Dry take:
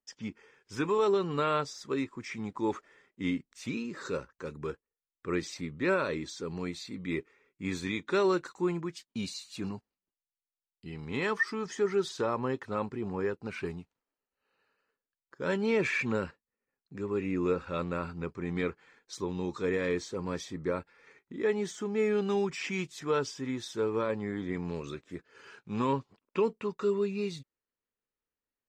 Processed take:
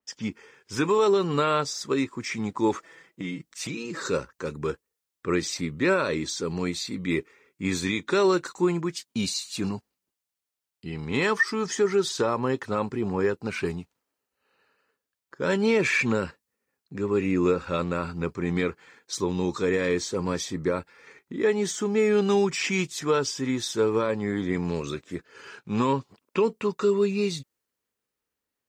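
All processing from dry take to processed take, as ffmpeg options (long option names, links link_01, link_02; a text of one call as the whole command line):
ffmpeg -i in.wav -filter_complex "[0:a]asettb=1/sr,asplit=3[link_01][link_02][link_03];[link_01]atrim=end=2.774[link_04];[link_02]atrim=start=2.77:end=4,asetpts=PTS-STARTPTS,afade=type=in:duration=0.004:curve=qsin,afade=type=out:start_time=1.226:duration=0.004:curve=qsin,aecho=1:1:6.1:0.72,atrim=end_sample=54243,acompressor=threshold=-37dB:ratio=5:attack=3.2:release=140:knee=1:detection=peak[link_05];[link_03]atrim=start=3.996[link_06];[link_04][link_05]acrossfade=duration=0.004:curve1=hsin:curve2=qsin[link_07];[link_07][link_06]acrossfade=duration=0.004:curve1=qsin:curve2=hsin,highpass=50,alimiter=limit=-21dB:level=0:latency=1:release=208,adynamicequalizer=threshold=0.00224:dfrequency=4100:dqfactor=0.7:tfrequency=4100:tqfactor=0.7:attack=5:release=100:ratio=0.375:range=3:mode=boostabove:tftype=highshelf,volume=7.5dB" out.wav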